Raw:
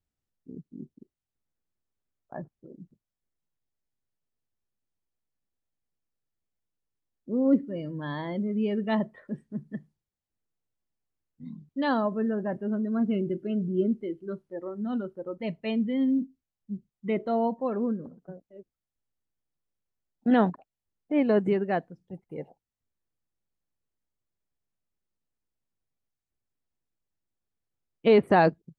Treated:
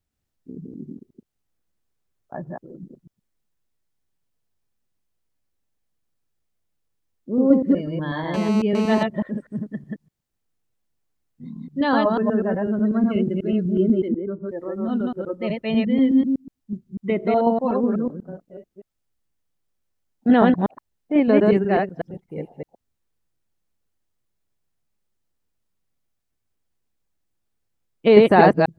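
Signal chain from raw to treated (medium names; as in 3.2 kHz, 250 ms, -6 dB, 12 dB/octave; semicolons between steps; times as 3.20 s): chunks repeated in reverse 123 ms, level -1 dB; 8.34–9.03 s: mobile phone buzz -35 dBFS; 14.08–14.49 s: low-pass 1.1 kHz 12 dB/octave; trim +5 dB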